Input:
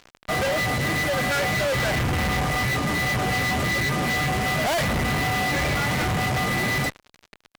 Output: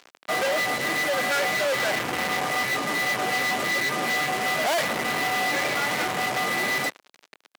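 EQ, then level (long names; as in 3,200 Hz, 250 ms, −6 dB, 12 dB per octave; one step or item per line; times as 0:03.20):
high-pass filter 330 Hz 12 dB per octave
0.0 dB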